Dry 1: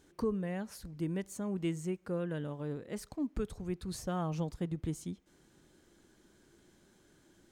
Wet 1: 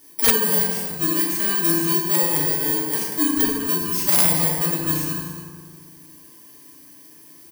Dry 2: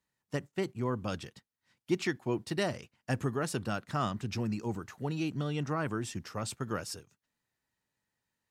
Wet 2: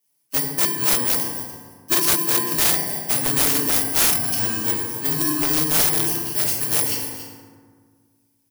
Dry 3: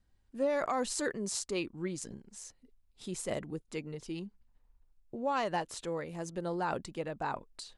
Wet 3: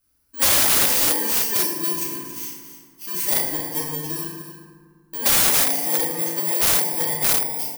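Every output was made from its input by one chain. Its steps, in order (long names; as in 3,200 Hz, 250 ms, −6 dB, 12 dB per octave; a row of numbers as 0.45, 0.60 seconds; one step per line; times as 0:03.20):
samples in bit-reversed order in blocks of 32 samples
spectral tilt +3 dB per octave
single-tap delay 278 ms −12 dB
feedback delay network reverb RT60 1.7 s, low-frequency decay 1.4×, high-frequency decay 0.45×, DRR −7 dB
wrap-around overflow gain 12.5 dB
loudness normalisation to −18 LKFS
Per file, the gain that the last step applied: +5.5, +1.5, +1.0 decibels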